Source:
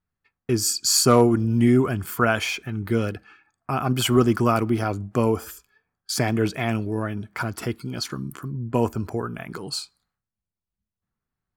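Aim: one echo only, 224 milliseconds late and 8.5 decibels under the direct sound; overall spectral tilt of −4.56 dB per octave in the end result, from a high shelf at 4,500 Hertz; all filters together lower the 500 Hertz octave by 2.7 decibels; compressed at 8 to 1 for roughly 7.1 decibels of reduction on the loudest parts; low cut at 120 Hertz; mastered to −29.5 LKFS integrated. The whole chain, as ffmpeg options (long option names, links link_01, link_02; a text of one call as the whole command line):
ffmpeg -i in.wav -af "highpass=120,equalizer=frequency=500:width_type=o:gain=-3.5,highshelf=frequency=4500:gain=-7.5,acompressor=threshold=-21dB:ratio=8,aecho=1:1:224:0.376,volume=-1dB" out.wav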